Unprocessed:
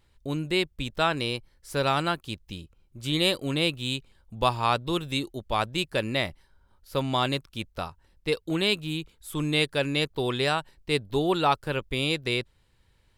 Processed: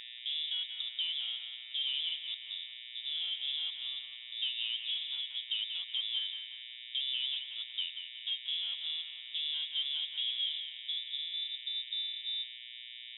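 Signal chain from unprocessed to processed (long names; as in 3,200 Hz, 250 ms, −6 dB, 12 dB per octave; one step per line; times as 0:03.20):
downward compressor 2 to 1, threshold −28 dBFS, peak gain reduction 6.5 dB
tube saturation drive 35 dB, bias 0.75
low-pass filter sweep 690 Hz → 130 Hz, 0:10.16–0:11.59
hum with harmonics 120 Hz, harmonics 16, −48 dBFS −4 dB per octave
feedback echo with a high-pass in the loop 182 ms, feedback 53%, high-pass 480 Hz, level −5.5 dB
voice inversion scrambler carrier 3,700 Hz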